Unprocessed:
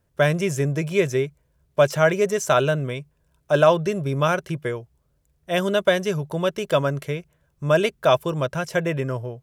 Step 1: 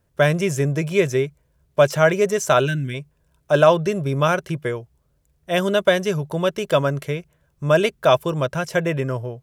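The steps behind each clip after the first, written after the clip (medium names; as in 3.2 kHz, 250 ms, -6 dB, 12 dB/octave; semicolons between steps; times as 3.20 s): time-frequency box 2.67–2.94 s, 380–1400 Hz -19 dB; trim +2 dB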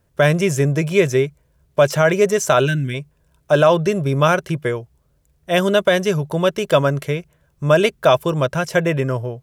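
loudness maximiser +6 dB; trim -2.5 dB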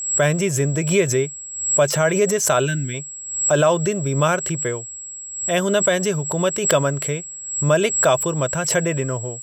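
whistle 7.7 kHz -28 dBFS; swell ahead of each attack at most 71 dB/s; trim -3.5 dB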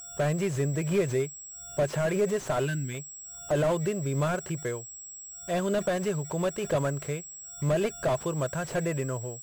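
slew-rate limiter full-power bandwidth 120 Hz; trim -7.5 dB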